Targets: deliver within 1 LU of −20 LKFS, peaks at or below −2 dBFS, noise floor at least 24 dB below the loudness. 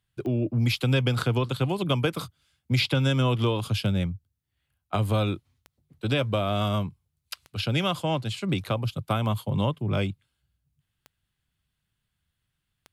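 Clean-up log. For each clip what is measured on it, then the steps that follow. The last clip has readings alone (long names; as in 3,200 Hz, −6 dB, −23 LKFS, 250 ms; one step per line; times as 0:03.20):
number of clicks 8; integrated loudness −26.5 LKFS; sample peak −10.0 dBFS; target loudness −20.0 LKFS
→ click removal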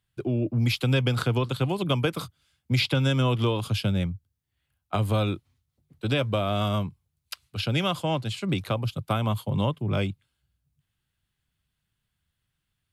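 number of clicks 0; integrated loudness −26.5 LKFS; sample peak −10.0 dBFS; target loudness −20.0 LKFS
→ level +6.5 dB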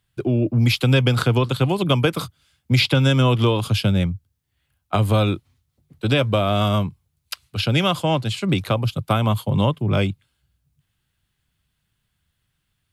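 integrated loudness −20.0 LKFS; sample peak −3.5 dBFS; background noise floor −74 dBFS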